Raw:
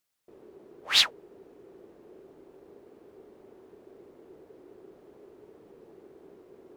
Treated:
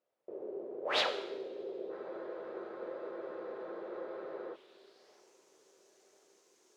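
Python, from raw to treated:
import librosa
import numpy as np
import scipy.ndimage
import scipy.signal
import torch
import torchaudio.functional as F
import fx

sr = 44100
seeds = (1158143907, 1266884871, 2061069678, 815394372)

p1 = fx.filter_sweep_bandpass(x, sr, from_hz=520.0, to_hz=6400.0, start_s=2.59, end_s=5.31, q=3.4)
p2 = p1 + fx.echo_filtered(p1, sr, ms=1034, feedback_pct=48, hz=2700.0, wet_db=-15, dry=0)
p3 = fx.rev_double_slope(p2, sr, seeds[0], early_s=0.86, late_s=3.1, knee_db=-21, drr_db=5.5)
p4 = fx.spec_freeze(p3, sr, seeds[1], at_s=1.93, hold_s=2.6)
y = p4 * 10.0 ** (14.5 / 20.0)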